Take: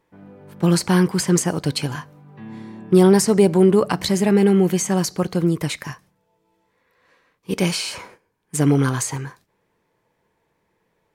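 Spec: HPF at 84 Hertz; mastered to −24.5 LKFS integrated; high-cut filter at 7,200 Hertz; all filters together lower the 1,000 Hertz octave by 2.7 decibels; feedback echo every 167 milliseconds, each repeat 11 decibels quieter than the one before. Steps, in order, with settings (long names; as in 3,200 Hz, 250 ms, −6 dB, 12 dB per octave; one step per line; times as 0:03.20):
high-pass filter 84 Hz
low-pass filter 7,200 Hz
parametric band 1,000 Hz −3.5 dB
repeating echo 167 ms, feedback 28%, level −11 dB
level −5.5 dB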